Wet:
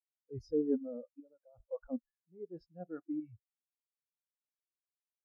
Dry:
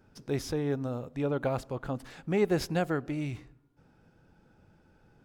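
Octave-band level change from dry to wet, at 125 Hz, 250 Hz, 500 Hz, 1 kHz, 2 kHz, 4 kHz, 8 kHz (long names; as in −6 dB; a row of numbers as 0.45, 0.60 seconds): −19.5 dB, −6.5 dB, −8.5 dB, −22.0 dB, −28.5 dB, below −25 dB, below −25 dB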